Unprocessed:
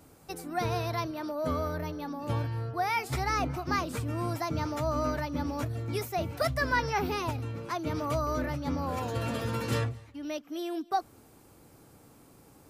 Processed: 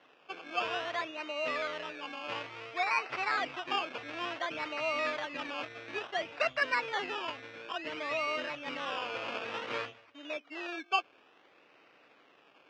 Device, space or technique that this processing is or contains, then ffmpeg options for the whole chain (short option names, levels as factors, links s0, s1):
circuit-bent sampling toy: -filter_complex "[0:a]asettb=1/sr,asplit=3[s0][s1][s2];[s0]atrim=end=6.634[s3];[s1]atrim=start=6.63:end=8.19,asetpts=PTS-STARTPTS,afade=t=in:d=0.004:c=qsin,afade=t=out:st=1.556:d=0.004:c=qsin,lowpass=f=1500:p=1[s4];[s2]atrim=start=8.186[s5];[s3][s4]acrossfade=d=0.004:c1=hsin:c2=qsin[s6];[s6][s5]acrossfade=d=0.004:c1=qsin:c2=hsin,acrusher=samples=18:mix=1:aa=0.000001:lfo=1:lforange=10.8:lforate=0.57,highpass=570,equalizer=f=860:t=q:w=4:g=-4,equalizer=f=2600:t=q:w=4:g=8,equalizer=f=4200:t=q:w=4:g=-5,lowpass=f=4500:w=0.5412,lowpass=f=4500:w=1.3066"